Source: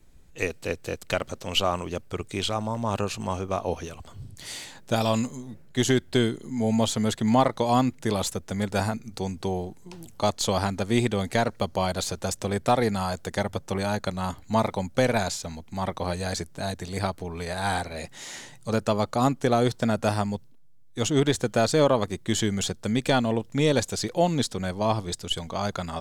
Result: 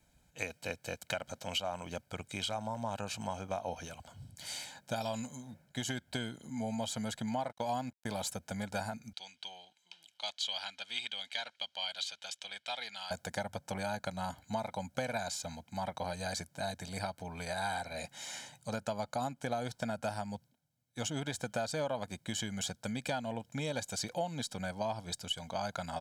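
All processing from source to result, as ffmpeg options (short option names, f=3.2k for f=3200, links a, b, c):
-filter_complex "[0:a]asettb=1/sr,asplit=3[a][b][c];[a]atrim=end=7.494[d];[b]atrim=start=7.49:end=8.23,asetpts=PTS-STARTPTS,afade=t=in:d=0.004:c=qsin,afade=t=out:st=0.736:d=0.004:c=qsin,agate=range=-33dB:threshold=-34dB:ratio=3:release=100:detection=peak,aeval=exprs='sgn(val(0))*max(abs(val(0))-0.00473,0)':c=same[e];[c]atrim=start=8.226[f];[d][e]acrossfade=d=0.004:c1=hsin:c2=qsin[g];[g][f]acrossfade=d=0.004:c1=qsin:c2=hsin,asettb=1/sr,asplit=3[h][i][j];[h]atrim=end=9.134[k];[i]atrim=start=9.13:end=13.11,asetpts=PTS-STARTPTS,afade=t=in:d=0.004:c=qsin,afade=t=out:st=3.976:d=0.004:c=qsin,acontrast=81,bandpass=f=3.2k:t=q:w=3.3[l];[j]atrim=start=13.106[m];[k][l]acrossfade=d=0.004:c1=hsin:c2=qsin[n];[n][m]acrossfade=d=0.004:c1=qsin:c2=hsin,aecho=1:1:1.3:0.69,acompressor=threshold=-25dB:ratio=6,highpass=f=210:p=1,volume=-6dB"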